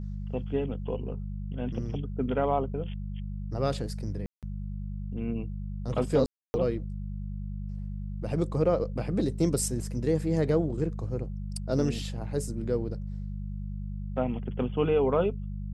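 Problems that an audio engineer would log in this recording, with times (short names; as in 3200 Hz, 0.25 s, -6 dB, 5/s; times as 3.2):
hum 50 Hz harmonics 4 -35 dBFS
4.26–4.43 gap 0.167 s
6.26–6.54 gap 0.28 s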